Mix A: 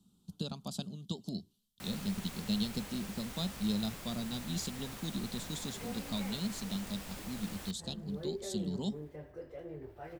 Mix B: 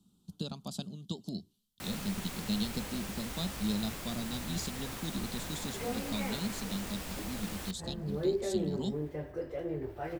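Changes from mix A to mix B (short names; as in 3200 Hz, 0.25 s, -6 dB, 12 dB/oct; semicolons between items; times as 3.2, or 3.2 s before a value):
first sound +4.5 dB; second sound +8.0 dB; master: add bell 320 Hz +2.5 dB 0.3 oct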